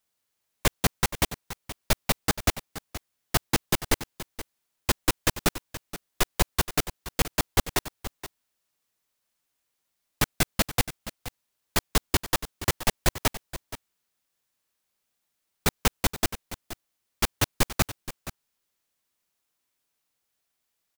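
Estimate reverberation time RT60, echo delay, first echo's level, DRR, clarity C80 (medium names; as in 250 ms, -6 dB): no reverb, 474 ms, -14.0 dB, no reverb, no reverb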